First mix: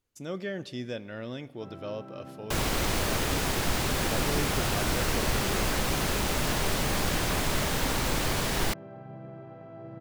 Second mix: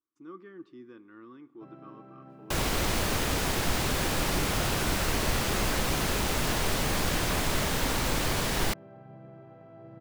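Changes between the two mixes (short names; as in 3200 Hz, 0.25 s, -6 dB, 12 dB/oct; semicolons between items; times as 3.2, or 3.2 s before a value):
speech: add double band-pass 610 Hz, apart 1.8 oct; first sound -5.0 dB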